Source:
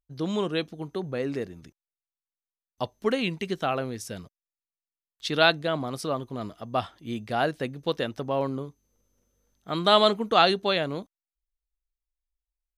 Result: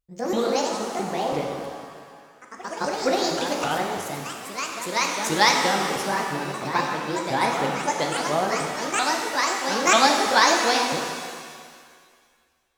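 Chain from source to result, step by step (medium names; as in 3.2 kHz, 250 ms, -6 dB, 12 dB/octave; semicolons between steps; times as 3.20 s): sawtooth pitch modulation +11.5 st, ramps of 331 ms; ever faster or slower copies 144 ms, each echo +2 st, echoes 3, each echo -6 dB; pitch-shifted reverb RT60 1.9 s, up +7 st, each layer -8 dB, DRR 1.5 dB; trim +2 dB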